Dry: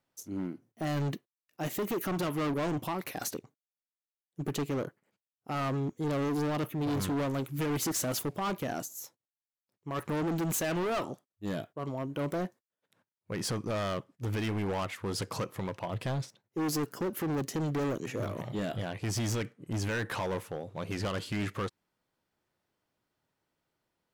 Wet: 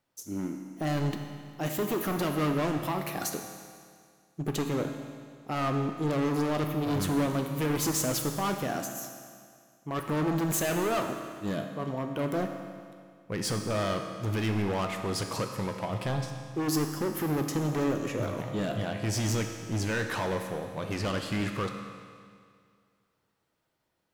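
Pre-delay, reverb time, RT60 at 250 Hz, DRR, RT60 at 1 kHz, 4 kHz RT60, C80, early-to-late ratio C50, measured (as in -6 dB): 8 ms, 2.1 s, 2.1 s, 4.5 dB, 2.1 s, 2.0 s, 7.0 dB, 6.0 dB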